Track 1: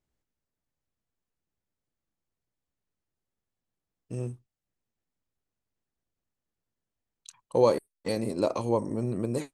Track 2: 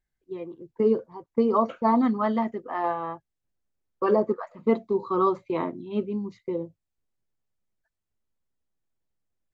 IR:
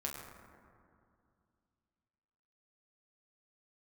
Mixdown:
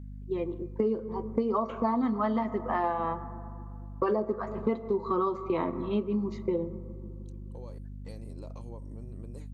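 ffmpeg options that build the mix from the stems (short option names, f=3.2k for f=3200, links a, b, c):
-filter_complex "[0:a]acompressor=threshold=-28dB:ratio=6,volume=-12dB[a];[1:a]aeval=exprs='val(0)+0.00562*(sin(2*PI*50*n/s)+sin(2*PI*2*50*n/s)/2+sin(2*PI*3*50*n/s)/3+sin(2*PI*4*50*n/s)/4+sin(2*PI*5*50*n/s)/5)':c=same,volume=3dB,asplit=3[b][c][d];[c]volume=-12.5dB[e];[d]apad=whole_len=420423[f];[a][f]sidechaincompress=threshold=-44dB:ratio=3:attack=8.2:release=979[g];[2:a]atrim=start_sample=2205[h];[e][h]afir=irnorm=-1:irlink=0[i];[g][b][i]amix=inputs=3:normalize=0,acompressor=threshold=-25dB:ratio=6"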